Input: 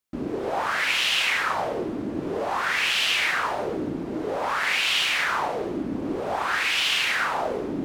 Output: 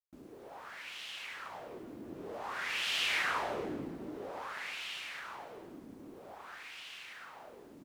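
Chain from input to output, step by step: Doppler pass-by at 3.29, 10 m/s, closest 4.2 m; in parallel at +2 dB: compressor, threshold -54 dBFS, peak gain reduction 29 dB; on the sum: requantised 10-bit, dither none; frequency-shifting echo 0.215 s, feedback 33%, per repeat +45 Hz, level -15.5 dB; gain -8.5 dB

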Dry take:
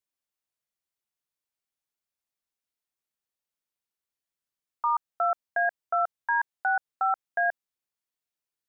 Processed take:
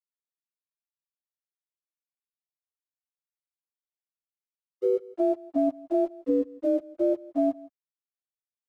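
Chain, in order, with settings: spectrum mirrored in octaves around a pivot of 680 Hz; crossover distortion -56 dBFS; echo 0.165 s -23 dB; compressor 2:1, threshold -30 dBFS, peak gain reduction 5 dB; three-band expander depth 40%; gain +6.5 dB

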